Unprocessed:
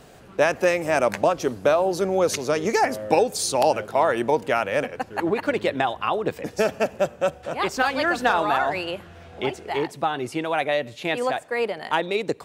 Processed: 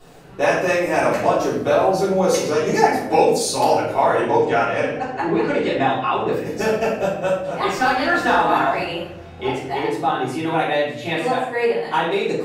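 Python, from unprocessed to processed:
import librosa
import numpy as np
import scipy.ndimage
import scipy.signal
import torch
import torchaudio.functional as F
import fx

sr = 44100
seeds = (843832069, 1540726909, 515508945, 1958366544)

y = fx.lowpass(x, sr, hz=8200.0, slope=24, at=(4.16, 6.31))
y = fx.room_shoebox(y, sr, seeds[0], volume_m3=150.0, walls='mixed', distance_m=3.4)
y = F.gain(torch.from_numpy(y), -8.0).numpy()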